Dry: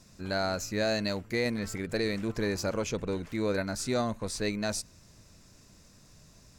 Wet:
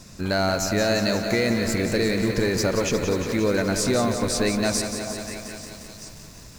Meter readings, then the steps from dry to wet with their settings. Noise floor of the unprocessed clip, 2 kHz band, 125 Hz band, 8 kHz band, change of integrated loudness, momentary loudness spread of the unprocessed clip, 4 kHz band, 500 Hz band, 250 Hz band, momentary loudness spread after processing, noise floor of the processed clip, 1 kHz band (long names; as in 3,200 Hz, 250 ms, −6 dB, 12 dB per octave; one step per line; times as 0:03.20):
−57 dBFS, +8.5 dB, +9.0 dB, +10.5 dB, +8.5 dB, 4 LU, +9.0 dB, +8.5 dB, +9.0 dB, 15 LU, −44 dBFS, +8.0 dB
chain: soft clipping −19.5 dBFS, distortion −23 dB
echo through a band-pass that steps 425 ms, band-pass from 840 Hz, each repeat 1.4 octaves, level −11.5 dB
in parallel at −7 dB: floating-point word with a short mantissa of 2 bits
on the sum: downward compressor 2 to 1, threshold −31 dBFS, peak gain reduction 5 dB
feedback echo at a low word length 177 ms, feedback 80%, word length 9 bits, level −8 dB
level +8.5 dB